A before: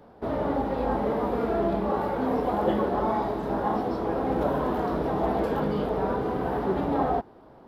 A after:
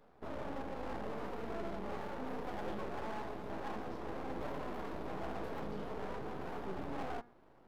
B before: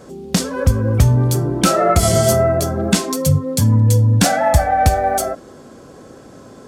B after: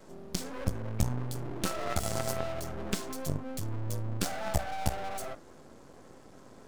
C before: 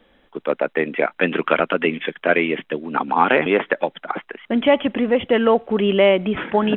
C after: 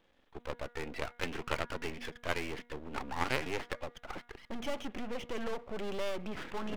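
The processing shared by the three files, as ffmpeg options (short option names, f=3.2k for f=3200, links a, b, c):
-af "aeval=exprs='0.891*(cos(1*acos(clip(val(0)/0.891,-1,1)))-cos(1*PI/2))+0.0794*(cos(4*acos(clip(val(0)/0.891,-1,1)))-cos(4*PI/2))+0.0708*(cos(8*acos(clip(val(0)/0.891,-1,1)))-cos(8*PI/2))':c=same,aeval=exprs='max(val(0),0)':c=same,bandreject=f=239.5:t=h:w=4,bandreject=f=479:t=h:w=4,bandreject=f=718.5:t=h:w=4,bandreject=f=958:t=h:w=4,bandreject=f=1.1975k:t=h:w=4,bandreject=f=1.437k:t=h:w=4,bandreject=f=1.6765k:t=h:w=4,bandreject=f=1.916k:t=h:w=4,bandreject=f=2.1555k:t=h:w=4,volume=-8.5dB"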